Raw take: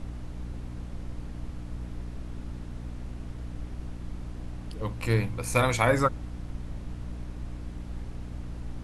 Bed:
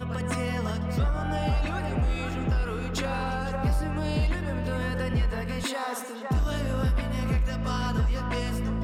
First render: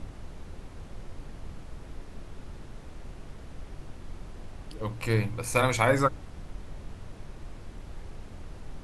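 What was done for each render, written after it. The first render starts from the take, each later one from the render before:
mains-hum notches 60/120/180/240/300 Hz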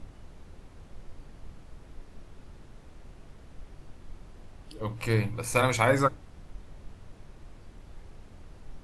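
noise reduction from a noise print 6 dB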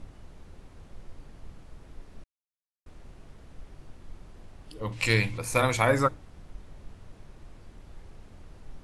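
0:02.24–0:02.86: silence
0:04.92–0:05.38: flat-topped bell 4,000 Hz +11 dB 2.5 octaves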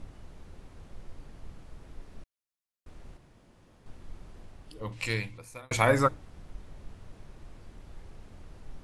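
0:03.17–0:03.86: fill with room tone
0:04.36–0:05.71: fade out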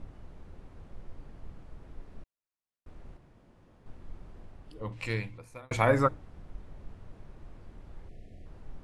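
0:08.09–0:08.46: time-frequency box erased 770–1,700 Hz
high-shelf EQ 3,000 Hz −11 dB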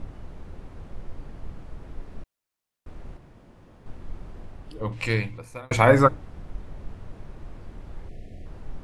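level +8 dB
brickwall limiter −2 dBFS, peak gain reduction 1 dB

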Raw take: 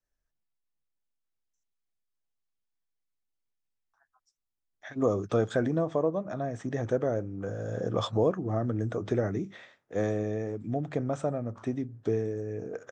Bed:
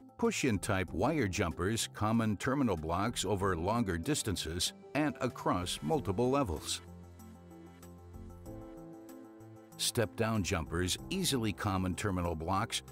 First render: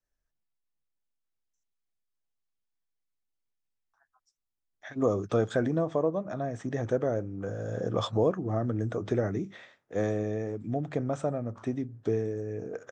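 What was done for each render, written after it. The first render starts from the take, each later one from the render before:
no processing that can be heard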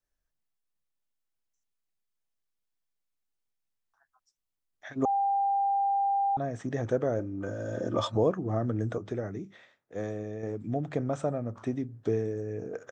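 0:05.05–0:06.37: beep over 795 Hz −23.5 dBFS
0:07.19–0:08.15: comb filter 3.3 ms
0:08.98–0:10.43: clip gain −6 dB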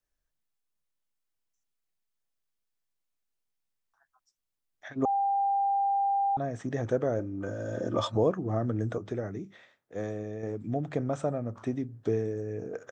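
0:04.88–0:05.38: high-frequency loss of the air 80 metres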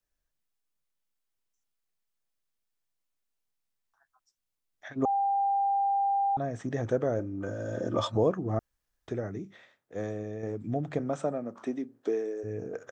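0:08.59–0:09.08: fill with room tone
0:10.98–0:12.43: high-pass filter 140 Hz → 330 Hz 24 dB per octave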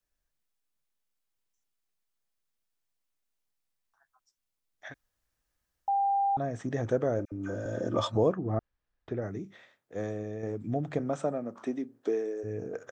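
0:04.94–0:05.88: fill with room tone
0:07.25–0:07.66: all-pass dispersion lows, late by 68 ms, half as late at 1,200 Hz
0:08.33–0:09.22: high-frequency loss of the air 210 metres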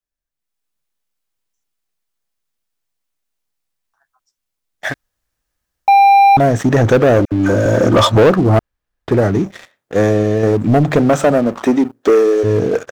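leveller curve on the samples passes 3
automatic gain control gain up to 12 dB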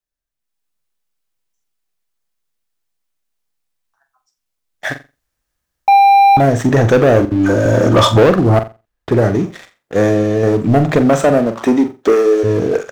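flutter between parallel walls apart 7.5 metres, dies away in 0.27 s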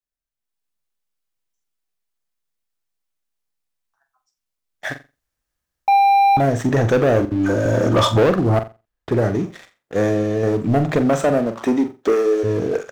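level −5.5 dB

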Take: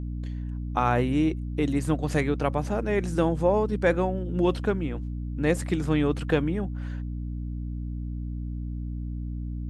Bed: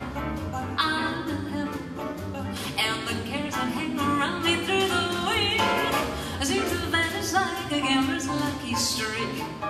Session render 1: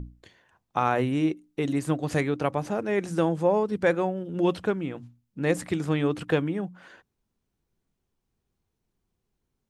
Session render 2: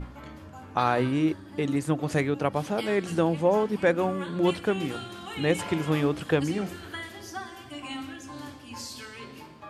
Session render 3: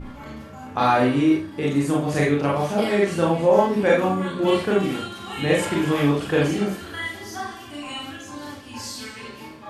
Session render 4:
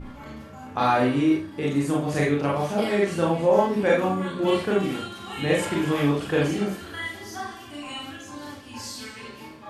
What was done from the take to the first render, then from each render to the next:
mains-hum notches 60/120/180/240/300 Hz
mix in bed −13.5 dB
four-comb reverb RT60 0.36 s, combs from 28 ms, DRR −4.5 dB
level −2.5 dB

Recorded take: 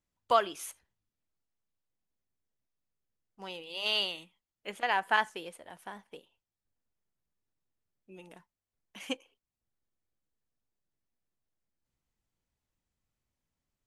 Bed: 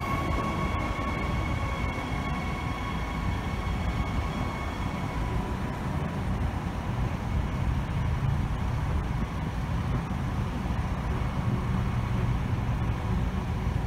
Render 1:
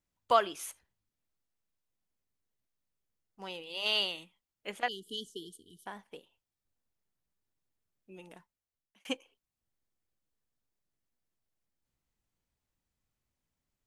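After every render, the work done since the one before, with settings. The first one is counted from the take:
0:04.88–0:05.86: linear-phase brick-wall band-stop 460–2,900 Hz
0:08.36–0:09.05: fade out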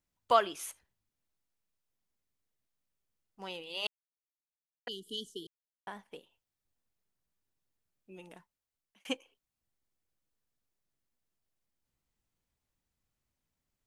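0:03.87–0:04.87: silence
0:05.47–0:05.87: silence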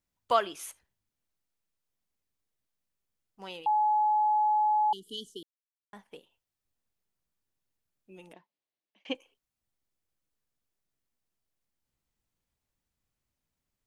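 0:03.66–0:04.93: beep over 849 Hz −22 dBFS
0:05.43–0:05.93: silence
0:08.33–0:09.15: loudspeaker in its box 210–4,600 Hz, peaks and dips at 310 Hz +5 dB, 600 Hz +4 dB, 1,400 Hz −9 dB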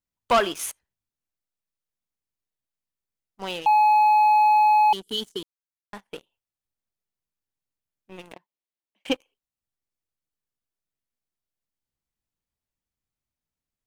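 leveller curve on the samples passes 3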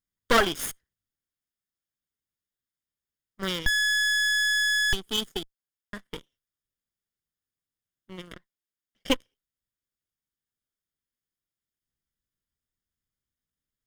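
lower of the sound and its delayed copy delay 0.59 ms
in parallel at −11.5 dB: bit reduction 4 bits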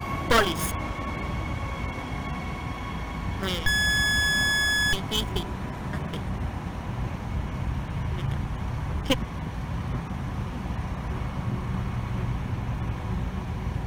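mix in bed −1.5 dB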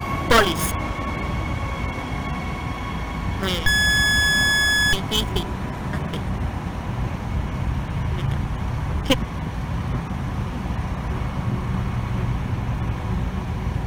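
level +5 dB

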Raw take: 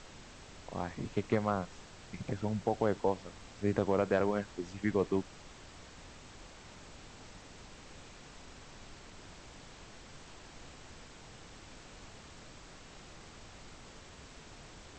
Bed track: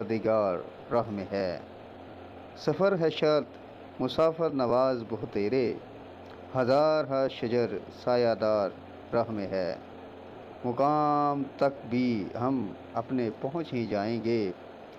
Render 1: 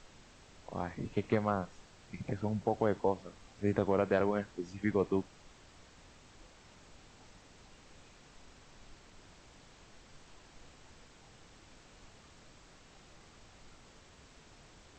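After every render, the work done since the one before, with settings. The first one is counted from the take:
noise reduction from a noise print 6 dB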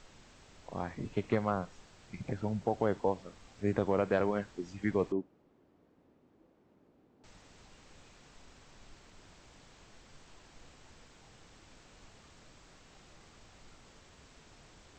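0:05.12–0:07.24: resonant band-pass 310 Hz, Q 1.4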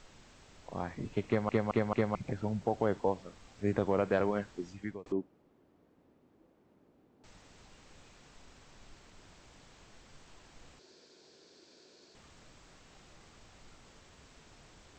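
0:01.27: stutter in place 0.22 s, 4 plays
0:04.63–0:05.06: fade out
0:10.79–0:12.15: loudspeaker in its box 290–6,900 Hz, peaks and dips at 380 Hz +10 dB, 820 Hz −9 dB, 1,200 Hz −10 dB, 2,000 Hz −8 dB, 2,900 Hz −7 dB, 4,500 Hz +8 dB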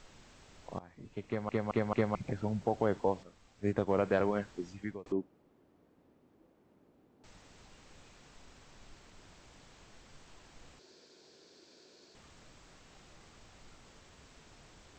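0:00.79–0:02.00: fade in, from −19.5 dB
0:03.23–0:03.90: expander for the loud parts, over −41 dBFS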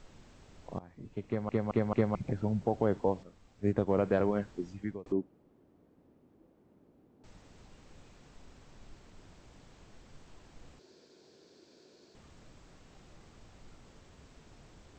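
tilt shelving filter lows +4 dB, about 670 Hz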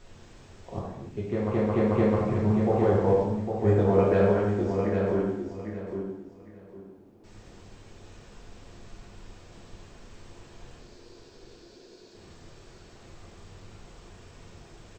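on a send: repeating echo 805 ms, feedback 23%, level −6 dB
on the sum: reverb whose tail is shaped and stops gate 330 ms falling, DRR −5.5 dB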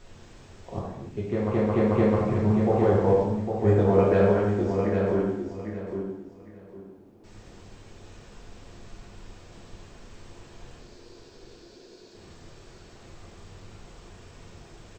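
level +1.5 dB

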